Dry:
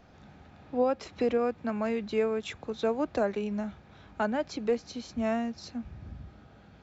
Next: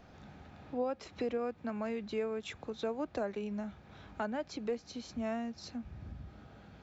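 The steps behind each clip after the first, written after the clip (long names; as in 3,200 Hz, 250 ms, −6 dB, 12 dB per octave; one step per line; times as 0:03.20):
downward compressor 1.5 to 1, threshold −46 dBFS, peak gain reduction 8.5 dB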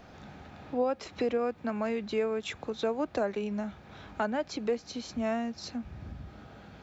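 low-shelf EQ 200 Hz −4 dB
level +6.5 dB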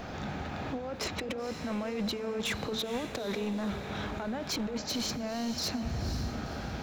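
compressor whose output falls as the input rises −38 dBFS, ratio −1
hard clipping −35 dBFS, distortion −12 dB
on a send: feedback delay with all-pass diffusion 506 ms, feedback 48%, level −9 dB
on the sum: level +5.5 dB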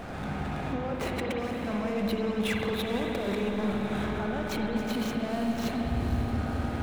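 running median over 9 samples
convolution reverb RT60 3.9 s, pre-delay 51 ms, DRR 0 dB
level +1.5 dB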